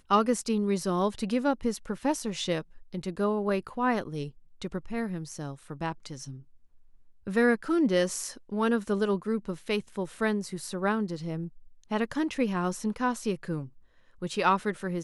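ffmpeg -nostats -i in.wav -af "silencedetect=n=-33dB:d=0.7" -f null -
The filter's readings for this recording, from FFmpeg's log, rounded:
silence_start: 6.31
silence_end: 7.27 | silence_duration: 0.96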